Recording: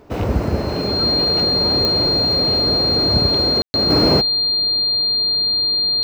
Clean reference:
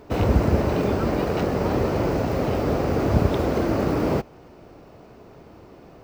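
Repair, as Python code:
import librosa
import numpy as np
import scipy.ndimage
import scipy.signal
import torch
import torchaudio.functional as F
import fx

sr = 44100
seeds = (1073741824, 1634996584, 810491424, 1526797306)

y = fx.fix_declick_ar(x, sr, threshold=10.0)
y = fx.notch(y, sr, hz=4200.0, q=30.0)
y = fx.fix_ambience(y, sr, seeds[0], print_start_s=0.0, print_end_s=0.5, start_s=3.62, end_s=3.74)
y = fx.fix_level(y, sr, at_s=3.9, step_db=-6.5)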